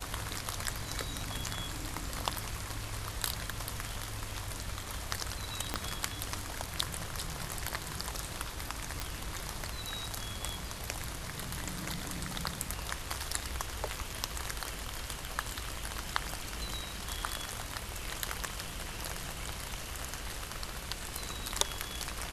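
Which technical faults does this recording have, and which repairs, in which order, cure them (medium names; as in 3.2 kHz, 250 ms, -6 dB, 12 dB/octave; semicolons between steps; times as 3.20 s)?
5.74 s: pop -15 dBFS
9.00 s: pop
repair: de-click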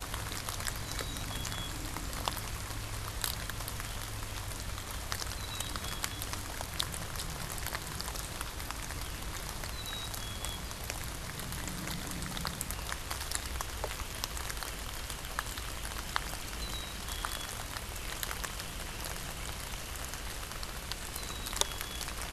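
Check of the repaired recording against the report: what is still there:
5.74 s: pop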